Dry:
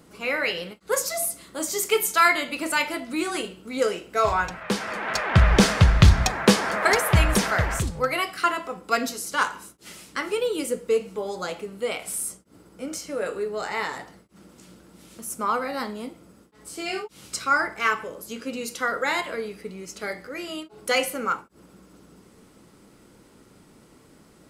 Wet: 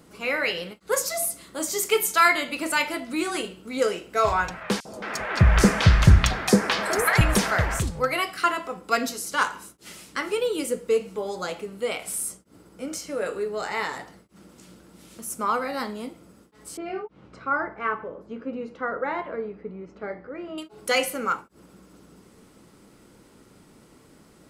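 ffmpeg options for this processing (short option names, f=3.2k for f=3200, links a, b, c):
-filter_complex "[0:a]asettb=1/sr,asplit=3[a][b][c];[a]atrim=end=4.804[d];[b]atrim=start=4.8:end=7.21,asetpts=PTS-STARTPTS,afade=t=in:d=0.004:c=qsin,afade=t=out:st=2.406:d=0.004:c=qsin,acrossover=split=740|4900[e][f][g];[e]adelay=50[h];[f]adelay=220[i];[h][i][g]amix=inputs=3:normalize=0,atrim=end_sample=106281[j];[c]atrim=start=7.206[k];[d][j]acrossfade=d=0.004:c1=hsin:c2=qsin[l];[l][k]acrossfade=d=0.004:c1=qsin:c2=hsin,asettb=1/sr,asplit=3[m][n][o];[m]atrim=end=16.774[p];[n]atrim=start=16.77:end=20.58,asetpts=PTS-STARTPTS,afade=t=in:d=0.004:c=qsin,afade=t=out:st=3.806:d=0.004:c=qsin,lowpass=1.2k[q];[o]atrim=start=20.576[r];[p][q]acrossfade=d=0.004:c1=hsin:c2=qsin[s];[s][r]acrossfade=d=0.004:c1=qsin:c2=hsin"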